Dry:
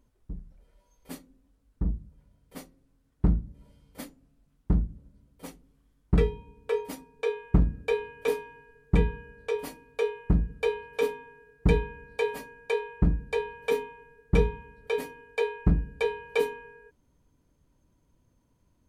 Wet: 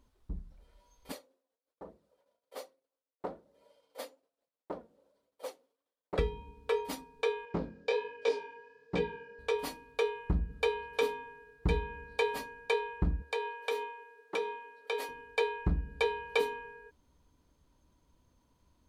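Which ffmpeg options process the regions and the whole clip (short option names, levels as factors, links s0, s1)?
-filter_complex "[0:a]asettb=1/sr,asplit=3[s0][s1][s2];[s0]atrim=end=1.124[s3];[s1]atrim=start=1.12:end=6.19,asetpts=PTS-STARTPTS,afade=t=in:d=0.004:c=qsin,afade=t=out:st=5.066:d=0.004:c=qsin,agate=range=0.0224:threshold=0.00141:ratio=3:release=100:detection=peak,flanger=delay=0.4:depth=3.9:regen=64:speed=1.2:shape=sinusoidal,highpass=f=530:t=q:w=4.2[s4];[s2]atrim=start=6.186[s5];[s3][s4]acrossfade=d=0.004:c1=hsin:c2=qsin[s6];[s6][s5]acrossfade=d=0.004:c1=qsin:c2=hsin,asettb=1/sr,asplit=3[s7][s8][s9];[s7]atrim=end=7.454[s10];[s8]atrim=start=7.45:end=9.39,asetpts=PTS-STARTPTS,afade=t=in:d=0.004:c=qsin,afade=t=out:st=1.936:d=0.004:c=qsin,flanger=delay=16.5:depth=7.2:speed=1.3,highpass=220,equalizer=f=520:t=q:w=4:g=9,equalizer=f=1200:t=q:w=4:g=-4,equalizer=f=5000:t=q:w=4:g=7,lowpass=f=7500:w=0.5412,lowpass=f=7500:w=1.3066[s11];[s9]atrim=start=9.386[s12];[s10][s11]acrossfade=d=0.004:c1=hsin:c2=qsin[s13];[s13][s12]acrossfade=d=0.004:c1=qsin:c2=hsin,asettb=1/sr,asplit=3[s14][s15][s16];[s14]atrim=end=13.224[s17];[s15]atrim=start=13.22:end=15.09,asetpts=PTS-STARTPTS,afade=t=in:d=0.004:c=qsin,afade=t=out:st=1.866:d=0.004:c=qsin,highpass=f=380:w=0.5412,highpass=f=380:w=1.3066,acompressor=threshold=0.0224:ratio=2:attack=3.2:release=140:knee=1:detection=peak[s18];[s16]atrim=start=15.086[s19];[s17][s18]acrossfade=d=0.004:c1=hsin:c2=qsin[s20];[s20][s19]acrossfade=d=0.004:c1=qsin:c2=hsin,equalizer=f=70:t=o:w=0.25:g=5.5,acompressor=threshold=0.0501:ratio=2.5,equalizer=f=125:t=o:w=1:g=-4,equalizer=f=1000:t=o:w=1:g=5,equalizer=f=4000:t=o:w=1:g=7,volume=0.841"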